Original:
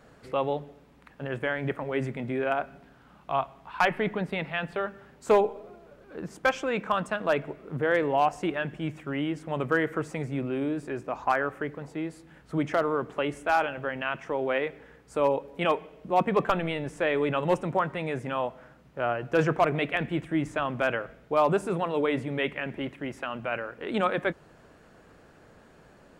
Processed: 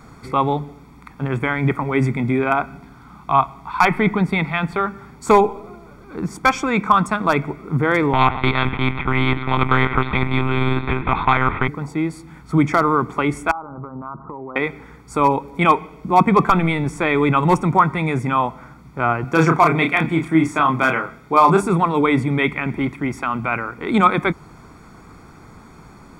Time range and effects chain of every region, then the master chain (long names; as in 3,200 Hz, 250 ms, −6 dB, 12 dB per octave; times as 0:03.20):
0:08.13–0:11.68: one-pitch LPC vocoder at 8 kHz 130 Hz + every bin compressed towards the loudest bin 2 to 1
0:13.51–0:14.56: Butterworth low-pass 1,300 Hz 72 dB per octave + notch filter 730 Hz, Q 8 + downward compressor 4 to 1, threshold −40 dBFS
0:19.24–0:21.63: high-pass filter 210 Hz 6 dB per octave + double-tracking delay 31 ms −4.5 dB
whole clip: parametric band 3,000 Hz −10.5 dB 0.31 octaves; comb filter 0.9 ms, depth 71%; boost into a limiter +11.5 dB; level −1 dB